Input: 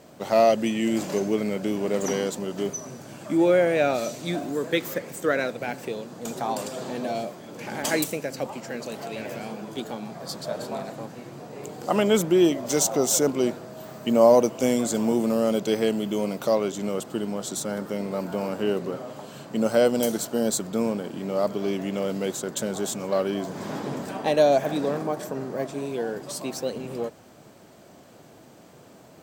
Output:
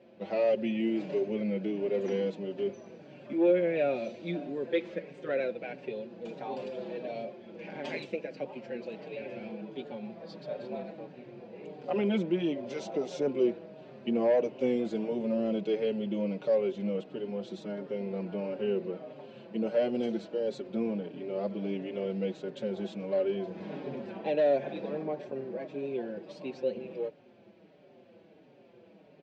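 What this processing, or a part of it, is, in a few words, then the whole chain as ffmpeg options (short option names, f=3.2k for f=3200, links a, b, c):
barber-pole flanger into a guitar amplifier: -filter_complex "[0:a]asplit=2[a][b];[b]adelay=5.3,afreqshift=-1.5[c];[a][c]amix=inputs=2:normalize=1,asoftclip=type=tanh:threshold=-15dB,highpass=100,equalizer=f=200:t=q:w=4:g=7,equalizer=f=370:t=q:w=4:g=8,equalizer=f=530:t=q:w=4:g=8,equalizer=f=1.2k:t=q:w=4:g=-7,equalizer=f=2.5k:t=q:w=4:g=7,lowpass=f=4k:w=0.5412,lowpass=f=4k:w=1.3066,volume=-8.5dB"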